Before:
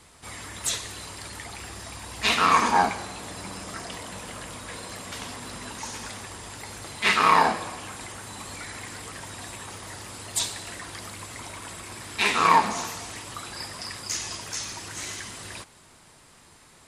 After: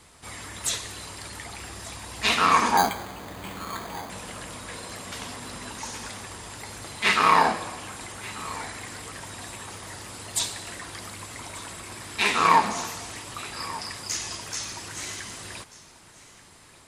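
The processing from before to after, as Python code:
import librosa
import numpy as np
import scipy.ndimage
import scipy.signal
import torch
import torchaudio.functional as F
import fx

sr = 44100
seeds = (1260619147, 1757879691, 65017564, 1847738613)

p1 = x + fx.echo_single(x, sr, ms=1187, db=-18.0, dry=0)
y = fx.resample_bad(p1, sr, factor=8, down='filtered', up='hold', at=(2.77, 4.1))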